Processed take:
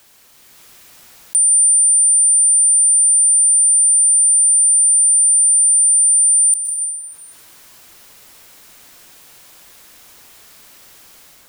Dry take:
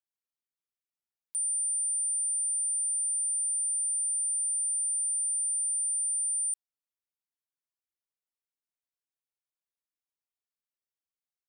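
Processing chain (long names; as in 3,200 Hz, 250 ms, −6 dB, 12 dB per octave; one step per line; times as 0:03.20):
automatic gain control gain up to 11.5 dB
dense smooth reverb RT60 2.2 s, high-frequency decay 0.35×, pre-delay 105 ms, DRR 5 dB
envelope flattener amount 50%
level +5 dB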